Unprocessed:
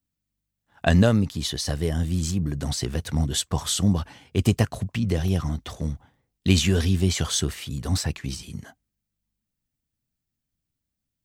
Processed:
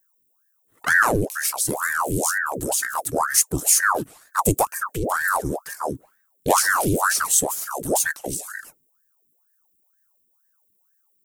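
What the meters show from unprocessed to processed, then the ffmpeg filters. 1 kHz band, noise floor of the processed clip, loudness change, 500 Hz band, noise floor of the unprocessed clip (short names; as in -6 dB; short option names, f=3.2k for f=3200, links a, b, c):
+14.5 dB, -68 dBFS, +3.5 dB, +3.5 dB, -84 dBFS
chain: -af "aexciter=amount=7.1:drive=6.3:freq=7.2k,bass=f=250:g=11,treble=f=4k:g=8,aeval=exprs='val(0)*sin(2*PI*960*n/s+960*0.8/2.1*sin(2*PI*2.1*n/s))':c=same,volume=-6.5dB"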